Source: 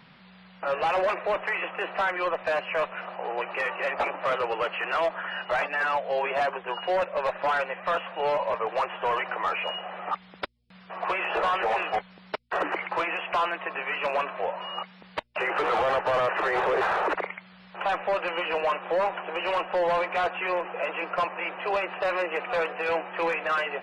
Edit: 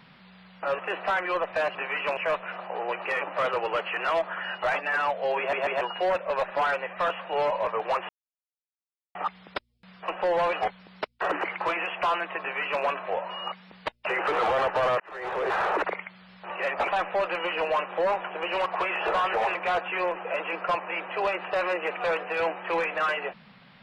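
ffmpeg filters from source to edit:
-filter_complex "[0:a]asplit=17[a][b][c][d][e][f][g][h][i][j][k][l][m][n][o][p][q];[a]atrim=end=0.792[r];[b]atrim=start=1.698:end=2.662[s];[c]atrim=start=13.718:end=14.142[t];[d]atrim=start=2.658:end=3.702[u];[e]atrim=start=4.078:end=6.402[v];[f]atrim=start=6.258:end=6.402[w];[g]atrim=start=6.258:end=6.402[x];[h]atrim=start=6.678:end=8.96,asetpts=PTS-STARTPTS,afade=t=out:st=2.278:d=0.004:c=hsin[y];[i]atrim=start=8.96:end=10.02,asetpts=PTS-STARTPTS,volume=0[z];[j]atrim=start=10.02:end=10.952,asetpts=PTS-STARTPTS,afade=t=in:d=0.004:c=hsin[aa];[k]atrim=start=19.588:end=20.042[ab];[l]atrim=start=11.838:end=16.31,asetpts=PTS-STARTPTS,afade=t=out:st=4.468:d=0.004:c=hsin[ac];[m]atrim=start=16.31:end=17.812,asetpts=PTS-STARTPTS,afade=t=in:d=0.64[ad];[n]atrim=start=3.698:end=4.082[ae];[o]atrim=start=17.808:end=19.592[af];[p]atrim=start=10.948:end=11.842[ag];[q]atrim=start=20.038[ah];[r][s]acrossfade=d=0.004:c1=hsin:c2=hsin[ai];[ai][t]acrossfade=d=0.004:c1=hsin:c2=hsin[aj];[aj][u]acrossfade=d=0.004:c1=hsin:c2=hsin[ak];[ak][v]acrossfade=d=0.004:c1=hsin:c2=hsin[al];[al][w]acrossfade=d=0.004:c1=hsin:c2=hsin[am];[am][x]acrossfade=d=0.004:c1=hsin:c2=hsin[an];[y][z][aa]concat=n=3:v=0:a=1[ao];[an][ao]acrossfade=d=0.004:c1=hsin:c2=hsin[ap];[ap][ab]acrossfade=d=0.004:c1=hsin:c2=hsin[aq];[ac][ad]concat=n=2:v=0:a=1[ar];[aq][ar]acrossfade=d=0.004:c1=hsin:c2=hsin[as];[as][ae]acrossfade=d=0.004:c1=hsin:c2=hsin[at];[at][af]acrossfade=d=0.004:c1=hsin:c2=hsin[au];[au][ag]acrossfade=d=0.004:c1=hsin:c2=hsin[av];[av][ah]acrossfade=d=0.004:c1=hsin:c2=hsin"

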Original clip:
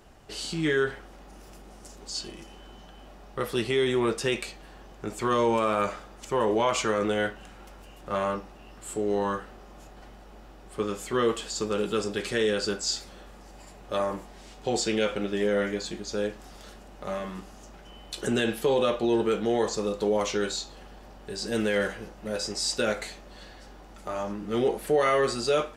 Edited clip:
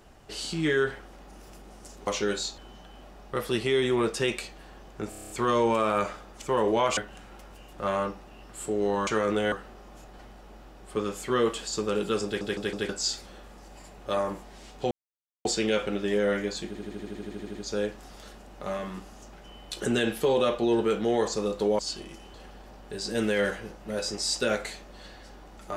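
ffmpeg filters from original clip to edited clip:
-filter_complex "[0:a]asplit=31[a][b][c][d][e][f][g][h][i][j][k][l][m][n][o][p][q][r][s][t][u][v][w][x][y][z][aa][ab][ac][ad][ae];[a]atrim=end=2.072[af];[b]atrim=start=20.198:end=20.712[ag];[c]atrim=start=2.618:end=5.162[ah];[d]atrim=start=5.128:end=5.162[ai];[e]atrim=start=5.128:end=5.162[aj];[f]atrim=start=5.128:end=5.162[ak];[g]atrim=start=5.128:end=5.162[al];[h]atrim=start=5.128:end=5.162[am];[i]atrim=start=5.128:end=5.162[an];[j]atrim=start=5.128:end=6.802[ao];[k]atrim=start=7.248:end=9.352[ap];[l]atrim=start=6.798:end=7.252[aq];[m]atrim=start=9.348:end=12.242[ar];[n]atrim=start=12.078:end=12.242[as];[o]atrim=start=12.078:end=12.242[at];[p]atrim=start=12.078:end=12.242[au];[q]atrim=start=12.718:end=14.74,asetpts=PTS-STARTPTS,afade=t=out:st=2.018:d=0.004:c=hsin,apad=pad_dur=0.54[av];[r]atrim=start=14.74:end=16.042,asetpts=PTS-STARTPTS,afade=t=in:d=0.004:c=hsin[aw];[s]atrim=start=15.958:end=16.042[ax];[t]atrim=start=15.958:end=16.042[ay];[u]atrim=start=15.958:end=16.042[az];[v]atrim=start=15.958:end=16.042[ba];[w]atrim=start=15.958:end=16.042[bb];[x]atrim=start=15.958:end=16.042[bc];[y]atrim=start=15.958:end=16.042[bd];[z]atrim=start=15.958:end=16.042[be];[aa]atrim=start=15.958:end=16.042[bf];[ab]atrim=start=15.958:end=16.042[bg];[ac]atrim=start=15.958:end=20.202[bh];[ad]atrim=start=2.068:end=2.622[bi];[ae]atrim=start=20.708[bj];[af][ag]acrossfade=d=0.004:c1=hsin:c2=hsin[bk];[bk][ah]acrossfade=d=0.004:c1=hsin:c2=hsin[bl];[bl][ai]acrossfade=d=0.004:c1=hsin:c2=hsin[bm];[bm][aj]acrossfade=d=0.004:c1=hsin:c2=hsin[bn];[bn][ak]acrossfade=d=0.004:c1=hsin:c2=hsin[bo];[bo][al]acrossfade=d=0.004:c1=hsin:c2=hsin[bp];[bp][am]acrossfade=d=0.004:c1=hsin:c2=hsin[bq];[bq][an]acrossfade=d=0.004:c1=hsin:c2=hsin[br];[br][ao]acrossfade=d=0.004:c1=hsin:c2=hsin[bs];[bs][ap]acrossfade=d=0.004:c1=hsin:c2=hsin[bt];[bt][aq]acrossfade=d=0.004:c1=hsin:c2=hsin[bu];[bu][ar]acrossfade=d=0.004:c1=hsin:c2=hsin[bv];[bv][as]acrossfade=d=0.004:c1=hsin:c2=hsin[bw];[bw][at]acrossfade=d=0.004:c1=hsin:c2=hsin[bx];[bx][au]acrossfade=d=0.004:c1=hsin:c2=hsin[by];[av][aw]concat=n=2:v=0:a=1[bz];[by][bz]acrossfade=d=0.004:c1=hsin:c2=hsin[ca];[ca][ax]acrossfade=d=0.004:c1=hsin:c2=hsin[cb];[cb][ay]acrossfade=d=0.004:c1=hsin:c2=hsin[cc];[cc][az]acrossfade=d=0.004:c1=hsin:c2=hsin[cd];[cd][ba]acrossfade=d=0.004:c1=hsin:c2=hsin[ce];[ce][bb]acrossfade=d=0.004:c1=hsin:c2=hsin[cf];[cf][bc]acrossfade=d=0.004:c1=hsin:c2=hsin[cg];[cg][bd]acrossfade=d=0.004:c1=hsin:c2=hsin[ch];[ch][be]acrossfade=d=0.004:c1=hsin:c2=hsin[ci];[ci][bf]acrossfade=d=0.004:c1=hsin:c2=hsin[cj];[cj][bg]acrossfade=d=0.004:c1=hsin:c2=hsin[ck];[ck][bh]acrossfade=d=0.004:c1=hsin:c2=hsin[cl];[cl][bi]acrossfade=d=0.004:c1=hsin:c2=hsin[cm];[cm][bj]acrossfade=d=0.004:c1=hsin:c2=hsin"

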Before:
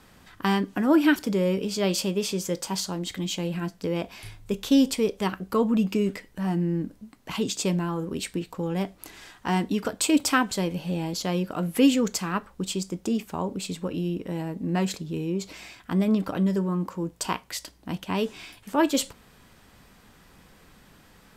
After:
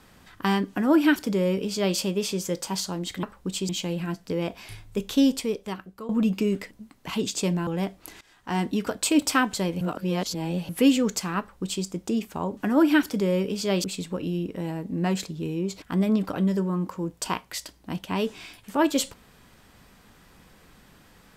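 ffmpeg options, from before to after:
-filter_complex "[0:a]asplit=12[a][b][c][d][e][f][g][h][i][j][k][l];[a]atrim=end=3.232[m];[b]atrim=start=12.368:end=12.832[n];[c]atrim=start=3.228:end=5.63,asetpts=PTS-STARTPTS,afade=t=out:st=1.452:d=0.95:silence=0.133352[o];[d]atrim=start=5.63:end=6.252,asetpts=PTS-STARTPTS,afade=t=in:d=0.004:c=hsin:silence=0.133352[p];[e]atrim=start=6.928:end=7.892[q];[f]atrim=start=8.648:end=9.19,asetpts=PTS-STARTPTS,afade=t=out:st=0.538:d=0.004:c=hsin:silence=0.105925[r];[g]atrim=start=9.19:end=10.792,asetpts=PTS-STARTPTS,afade=t=in:d=0.45:silence=0.105925[s];[h]atrim=start=10.788:end=11.672,asetpts=PTS-STARTPTS,areverse[t];[i]atrim=start=11.668:end=13.552[u];[j]atrim=start=0.698:end=1.972[v];[k]atrim=start=13.548:end=15.532[w];[l]atrim=start=15.808[x];[m][n]acrossfade=d=0.004:c1=hsin:c2=hsin[y];[o][p]concat=n=2:v=0:a=1[z];[y][z]acrossfade=d=0.004:c1=hsin:c2=hsin[aa];[aa][q]acrossfade=d=0.004:c1=hsin:c2=hsin[ab];[r][s]concat=n=2:v=0:a=1[ac];[ab][ac]acrossfade=d=0.004:c1=hsin:c2=hsin[ad];[ad][t]acrossfade=d=0.004:c1=hsin:c2=hsin[ae];[ae][u]acrossfade=d=0.004:c1=hsin:c2=hsin[af];[af][v]acrossfade=d=0.004:c1=hsin:c2=hsin[ag];[ag][w]acrossfade=d=0.004:c1=hsin:c2=hsin[ah];[ah][x]acrossfade=d=0.004:c1=hsin:c2=hsin"

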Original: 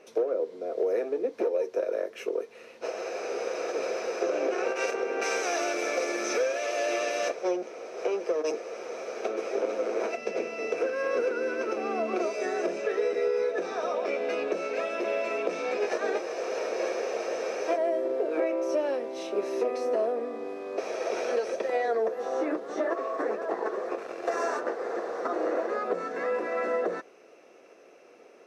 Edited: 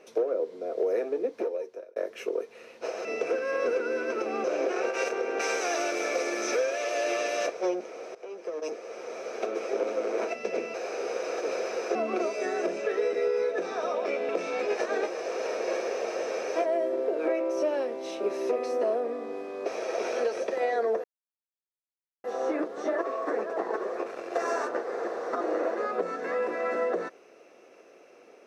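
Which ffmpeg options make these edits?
-filter_complex "[0:a]asplit=9[a][b][c][d][e][f][g][h][i];[a]atrim=end=1.96,asetpts=PTS-STARTPTS,afade=t=out:st=1.24:d=0.72[j];[b]atrim=start=1.96:end=3.052,asetpts=PTS-STARTPTS,afade=t=in:d=0.004:c=hsin[k];[c]atrim=start=10.558:end=11.952[l];[d]atrim=start=4.258:end=7.97,asetpts=PTS-STARTPTS,afade=t=out:st=3.708:d=0.004:c=hsin:silence=0.11885[m];[e]atrim=start=7.97:end=10.562,asetpts=PTS-STARTPTS,afade=t=in:d=1.42:c=qsin:silence=0.11885[n];[f]atrim=start=3.048:end=4.262[o];[g]atrim=start=11.948:end=14.292[p];[h]atrim=start=15.408:end=22.16,asetpts=PTS-STARTPTS,afade=t=out:st=6.748:d=0.004:c=hsin,apad=pad_dur=1.2[q];[i]atrim=start=22.16,asetpts=PTS-STARTPTS,afade=t=in:d=0.004:c=hsin[r];[j][k]concat=n=2:v=0:a=1[s];[s][l]acrossfade=d=0.004:c1=hsin:c2=hsin[t];[m][n]concat=n=2:v=0:a=1[u];[t][u]acrossfade=d=0.004:c1=hsin:c2=hsin[v];[v][o]acrossfade=d=0.004:c1=hsin:c2=hsin[w];[w][p]acrossfade=d=0.004:c1=hsin:c2=hsin[x];[q][r]concat=n=2:v=0:a=1[y];[x][y]acrossfade=d=0.004:c1=hsin:c2=hsin"

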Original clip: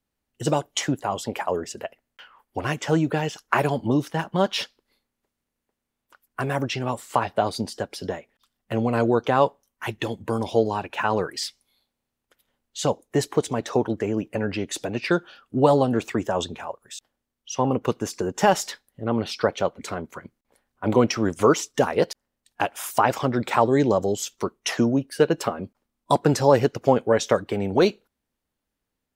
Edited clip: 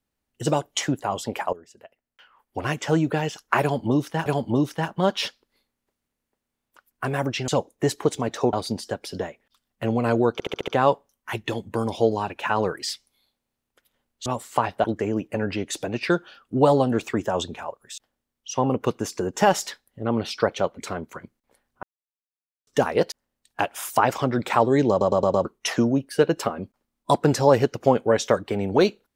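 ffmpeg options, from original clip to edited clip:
-filter_complex "[0:a]asplit=19[a][b][c][d][e][f][g][h][i][j][k][l][m][n][o][p][q][r][s];[a]atrim=end=1.53,asetpts=PTS-STARTPTS,afade=t=out:st=1.526:d=0.004:c=hsin:silence=0.125893[t];[b]atrim=start=1.53:end=4.262,asetpts=PTS-STARTPTS,afade=t=in:d=1.13:c=qua:silence=0.125893[u];[c]atrim=start=3.618:end=6.842[v];[d]atrim=start=12.798:end=13.852[w];[e]atrim=start=7.418:end=9.292[x];[f]atrim=start=9.218:end=9.292[y];[g]atrim=start=9.218:end=9.292[z];[h]atrim=start=9.218:end=9.292[aa];[i]atrim=start=9.218:end=9.292[ab];[j]atrim=start=9.218:end=12.802[ac];[k]atrim=start=6.838:end=7.422[ad];[l]atrim=start=13.848:end=20.84,asetpts=PTS-STARTPTS,afade=t=out:st=6.988:d=0.004:c=hsin[ae];[m]atrim=start=20.84:end=21.68,asetpts=PTS-STARTPTS,volume=0[af];[n]atrim=start=21.68:end=24.022,asetpts=PTS-STARTPTS,afade=t=in:d=0.004:c=hsin[ag];[o]atrim=start=23.908:end=24.022[ah];[p]atrim=start=23.908:end=24.022[ai];[q]atrim=start=23.908:end=24.022[aj];[r]atrim=start=23.908:end=24.022[ak];[s]atrim=start=24.458[al];[t][u]concat=n=2:v=0:a=1[am];[am][v]acrossfade=d=0.004:c1=hsin:c2=hsin[an];[an][w]acrossfade=d=0.004:c1=hsin:c2=hsin[ao];[ao][x]acrossfade=d=0.004:c1=hsin:c2=hsin[ap];[ap][y]acrossfade=d=0.004:c1=hsin:c2=hsin[aq];[aq][z]acrossfade=d=0.004:c1=hsin:c2=hsin[ar];[ar][aa]acrossfade=d=0.004:c1=hsin:c2=hsin[as];[as][ab]acrossfade=d=0.004:c1=hsin:c2=hsin[at];[at][ac]acrossfade=d=0.004:c1=hsin:c2=hsin[au];[au][ad]acrossfade=d=0.004:c1=hsin:c2=hsin[av];[ae][af][ag]concat=n=3:v=0:a=1[aw];[av][aw]acrossfade=d=0.004:c1=hsin:c2=hsin[ax];[ax][ah]acrossfade=d=0.004:c1=hsin:c2=hsin[ay];[ay][ai]acrossfade=d=0.004:c1=hsin:c2=hsin[az];[az][aj]acrossfade=d=0.004:c1=hsin:c2=hsin[ba];[ba][ak]acrossfade=d=0.004:c1=hsin:c2=hsin[bb];[bb][al]acrossfade=d=0.004:c1=hsin:c2=hsin"

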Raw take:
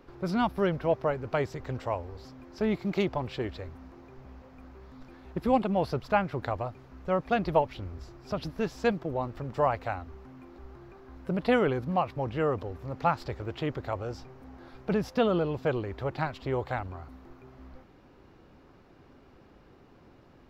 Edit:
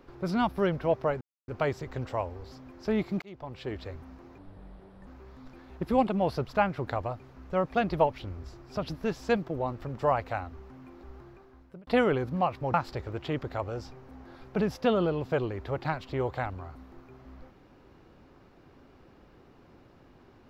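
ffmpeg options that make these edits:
-filter_complex "[0:a]asplit=7[a][b][c][d][e][f][g];[a]atrim=end=1.21,asetpts=PTS-STARTPTS,afade=t=out:st=1.206:d=0.004:c=hsin,apad=pad_dur=0.27[h];[b]atrim=start=1.21:end=2.95,asetpts=PTS-STARTPTS,afade=t=in:d=0.004:c=hsin,afade=t=out:st=1.736:d=0.004:c=hsin[i];[c]atrim=start=2.95:end=4.114,asetpts=PTS-STARTPTS,afade=t=in:d=0.66[j];[d]atrim=start=4.11:end=4.62,asetpts=PTS-STARTPTS,asetrate=32634,aresample=44100,atrim=end_sample=30393,asetpts=PTS-STARTPTS[k];[e]atrim=start=4.616:end=11.42,asetpts=PTS-STARTPTS,afade=t=out:st=6.124:d=0.68[l];[f]atrim=start=11.42:end=12.292,asetpts=PTS-STARTPTS,afade=t=in:d=0.004:c=hsin[m];[g]atrim=start=13.068[n];[h][i][j]concat=n=3:v=0:a=1[o];[o][k]acrossfade=d=0.004:c1=hsin:c2=hsin[p];[l][m]concat=n=2:v=0:a=1[q];[p][q]acrossfade=d=0.004:c1=hsin:c2=hsin[r];[r][n]acrossfade=d=0.004:c1=hsin:c2=hsin"

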